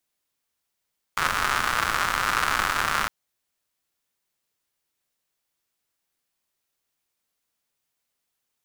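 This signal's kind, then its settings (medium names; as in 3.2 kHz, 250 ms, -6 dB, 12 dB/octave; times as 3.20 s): rain from filtered ticks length 1.91 s, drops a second 170, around 1.3 kHz, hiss -11 dB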